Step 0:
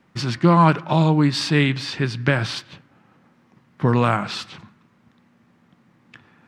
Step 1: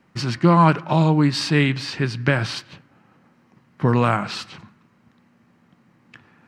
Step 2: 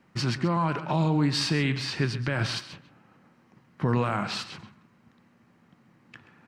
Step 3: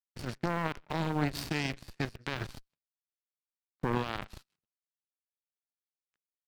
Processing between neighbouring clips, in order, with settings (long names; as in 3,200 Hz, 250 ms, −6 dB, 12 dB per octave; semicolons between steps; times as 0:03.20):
notch filter 3,500 Hz, Q 13
brickwall limiter −13 dBFS, peak gain reduction 11.5 dB; single-tap delay 131 ms −14 dB; level −2.5 dB
power curve on the samples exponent 3; in parallel at −5.5 dB: comparator with hysteresis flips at −41.5 dBFS